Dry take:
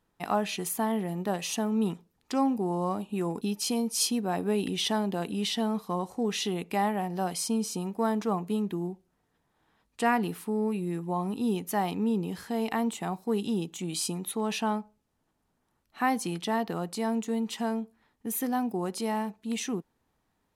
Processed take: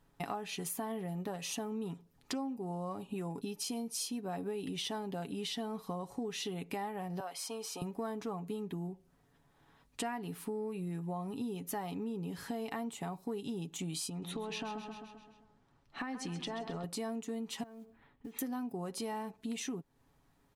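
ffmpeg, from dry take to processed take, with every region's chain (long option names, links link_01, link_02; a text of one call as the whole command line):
ffmpeg -i in.wav -filter_complex "[0:a]asettb=1/sr,asplit=3[link_01][link_02][link_03];[link_01]atrim=end=7.204[link_04];[link_02]atrim=start=7.2:end=7.82,asetpts=PTS-STARTPTS,afade=type=in:duration=0.004:curve=qsin,afade=type=out:start_time=0.616:duration=0.004:curve=qsin,highpass=710,equalizer=frequency=8400:width=0.48:gain=-10[link_05];[link_03]atrim=start=7.816[link_06];[link_04][link_05]acrossfade=duration=0.004:curve1=hsin:curve2=qsin[link_07];[link_07][link_06]acrossfade=duration=0.004:curve1=qsin:curve2=hsin,asettb=1/sr,asplit=3[link_08][link_09][link_10];[link_08]atrim=end=14.094[link_11];[link_09]atrim=start=14.09:end=16.84,asetpts=PTS-STARTPTS,afade=type=in:duration=0.004:curve=qsin,afade=type=out:start_time=2.746:duration=0.004:curve=qsin,lowpass=5400,acompressor=threshold=-33dB:ratio=6:attack=3.2:release=140:knee=1:detection=peak,aecho=1:1:131|262|393|524|655|786:0.316|0.174|0.0957|0.0526|0.0289|0.0159,atrim=end_sample=121275[link_12];[link_10]atrim=start=16.836[link_13];[link_11][link_12]acrossfade=duration=0.004:curve1=hsin:curve2=qsin[link_14];[link_14][link_13]acrossfade=duration=0.004:curve1=qsin:curve2=hsin,asettb=1/sr,asplit=3[link_15][link_16][link_17];[link_15]atrim=end=17.634[link_18];[link_16]atrim=start=17.63:end=18.39,asetpts=PTS-STARTPTS,afade=type=in:duration=0.004:curve=qsin,afade=type=out:start_time=0.756:duration=0.004:curve=qsin,lowpass=frequency=3400:width=0.5412,lowpass=frequency=3400:width=1.3066,acompressor=threshold=-45dB:ratio=12:attack=3.2:release=140:knee=1:detection=peak,acrusher=bits=7:mode=log:mix=0:aa=0.000001[link_19];[link_17]atrim=start=18.386[link_20];[link_18][link_19]acrossfade=duration=0.004:curve1=hsin:curve2=qsin[link_21];[link_21][link_20]acrossfade=duration=0.004:curve1=qsin:curve2=hsin,lowshelf=frequency=190:gain=5.5,aecho=1:1:7.2:0.48,acompressor=threshold=-39dB:ratio=6,volume=2dB" out.wav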